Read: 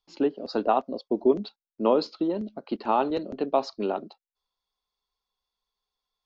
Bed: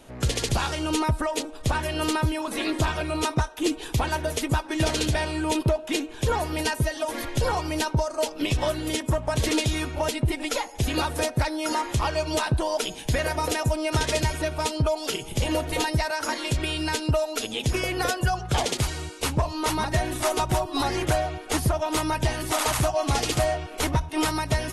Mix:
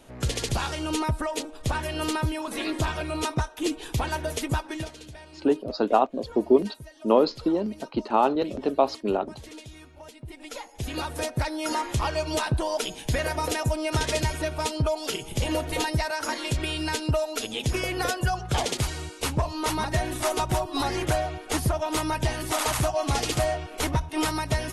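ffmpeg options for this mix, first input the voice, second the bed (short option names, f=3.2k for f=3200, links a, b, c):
-filter_complex "[0:a]adelay=5250,volume=2.5dB[a];[1:a]volume=15.5dB,afade=t=out:st=4.66:d=0.24:silence=0.141254,afade=t=in:st=10.19:d=1.48:silence=0.125893[b];[a][b]amix=inputs=2:normalize=0"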